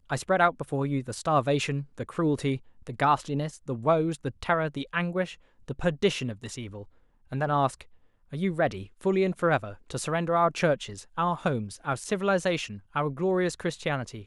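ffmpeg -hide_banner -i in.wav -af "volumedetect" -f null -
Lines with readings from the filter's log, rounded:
mean_volume: -28.2 dB
max_volume: -8.5 dB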